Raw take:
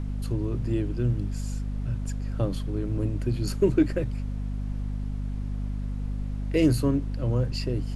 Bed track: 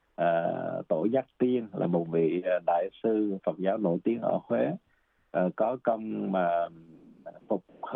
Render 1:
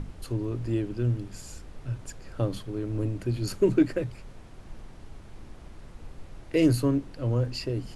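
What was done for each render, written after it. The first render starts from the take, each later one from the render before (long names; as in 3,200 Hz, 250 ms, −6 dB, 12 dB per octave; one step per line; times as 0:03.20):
mains-hum notches 50/100/150/200/250 Hz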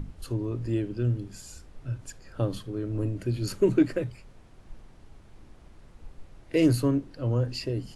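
noise reduction from a noise print 6 dB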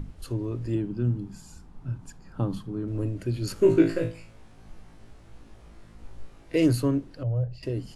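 0:00.75–0:02.88: drawn EQ curve 120 Hz 0 dB, 170 Hz +9 dB, 570 Hz −7 dB, 860 Hz +5 dB, 1,900 Hz −6 dB
0:03.54–0:06.56: flutter between parallel walls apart 3.1 metres, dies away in 0.35 s
0:07.23–0:07.63: drawn EQ curve 170 Hz 0 dB, 250 Hz −24 dB, 660 Hz +1 dB, 940 Hz −14 dB, 3,700 Hz −17 dB, 9,200 Hz −27 dB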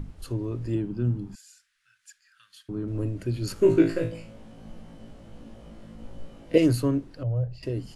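0:01.35–0:02.69: elliptic high-pass filter 1,600 Hz, stop band 50 dB
0:04.12–0:06.58: hollow resonant body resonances 220/530/3,000 Hz, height 12 dB, ringing for 25 ms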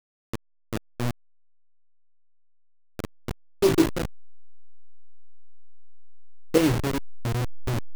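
hold until the input has moved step −19 dBFS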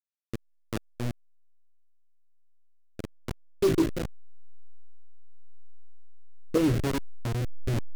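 rotating-speaker cabinet horn 1.1 Hz
soft clipping −15.5 dBFS, distortion −15 dB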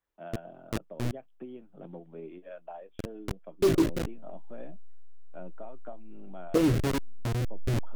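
mix in bed track −17.5 dB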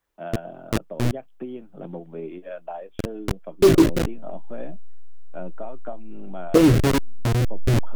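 level +9 dB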